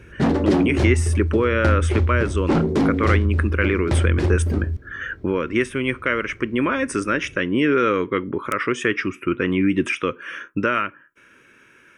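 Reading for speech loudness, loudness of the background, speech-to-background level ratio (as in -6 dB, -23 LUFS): -22.5 LUFS, -21.5 LUFS, -1.0 dB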